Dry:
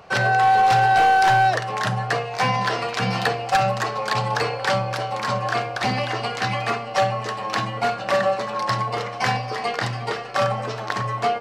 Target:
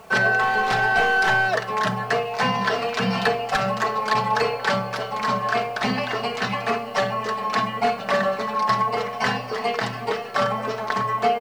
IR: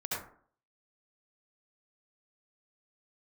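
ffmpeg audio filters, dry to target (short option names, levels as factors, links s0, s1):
-af "highshelf=f=4100:g=-6.5,aecho=1:1:4.6:0.66,acrusher=bits=8:mix=0:aa=0.000001"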